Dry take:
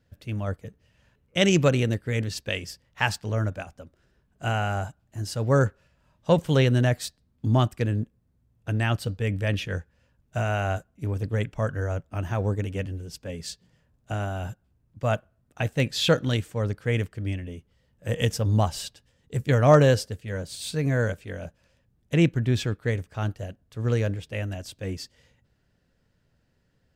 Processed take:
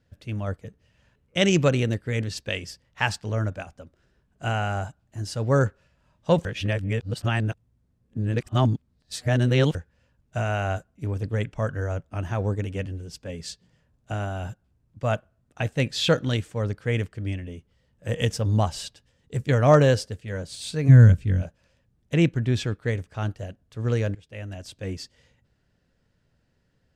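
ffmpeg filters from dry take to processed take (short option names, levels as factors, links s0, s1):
-filter_complex "[0:a]asplit=3[s0][s1][s2];[s0]afade=t=out:st=20.88:d=0.02[s3];[s1]asubboost=boost=11.5:cutoff=190,afade=t=in:st=20.88:d=0.02,afade=t=out:st=21.41:d=0.02[s4];[s2]afade=t=in:st=21.41:d=0.02[s5];[s3][s4][s5]amix=inputs=3:normalize=0,asplit=4[s6][s7][s8][s9];[s6]atrim=end=6.452[s10];[s7]atrim=start=6.448:end=9.752,asetpts=PTS-STARTPTS,areverse[s11];[s8]atrim=start=9.748:end=24.15,asetpts=PTS-STARTPTS,afade=t=out:st=14.398:d=0.004:c=hsin:silence=0.141254[s12];[s9]atrim=start=24.15,asetpts=PTS-STARTPTS,afade=t=in:d=0.61:silence=0.141254[s13];[s10][s11]acrossfade=d=0.004:c1=hsin:c2=hsin[s14];[s12][s13]concat=n=2:v=0:a=1[s15];[s14][s15]acrossfade=d=0.004:c1=hsin:c2=hsin,lowpass=10000"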